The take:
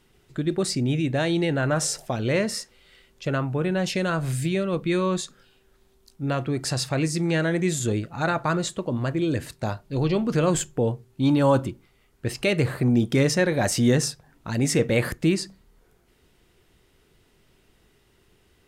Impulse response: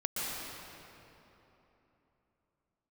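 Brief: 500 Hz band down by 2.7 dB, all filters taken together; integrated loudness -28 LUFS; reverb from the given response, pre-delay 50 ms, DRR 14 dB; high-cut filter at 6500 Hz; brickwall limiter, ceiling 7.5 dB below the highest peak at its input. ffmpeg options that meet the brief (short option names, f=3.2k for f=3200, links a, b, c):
-filter_complex "[0:a]lowpass=6.5k,equalizer=f=500:t=o:g=-3.5,alimiter=limit=-16.5dB:level=0:latency=1,asplit=2[a][b];[1:a]atrim=start_sample=2205,adelay=50[c];[b][c]afir=irnorm=-1:irlink=0,volume=-20dB[d];[a][d]amix=inputs=2:normalize=0,volume=-1dB"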